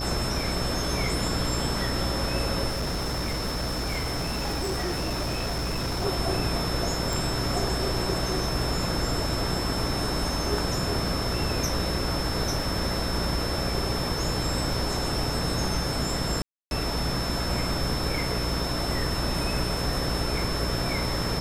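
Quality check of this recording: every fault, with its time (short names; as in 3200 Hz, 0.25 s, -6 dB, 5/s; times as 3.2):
buzz 60 Hz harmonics 11 -32 dBFS
crackle 19/s -34 dBFS
tone 5300 Hz -33 dBFS
2.68–6.06 clipped -25 dBFS
7.13 pop
16.42–16.71 gap 0.291 s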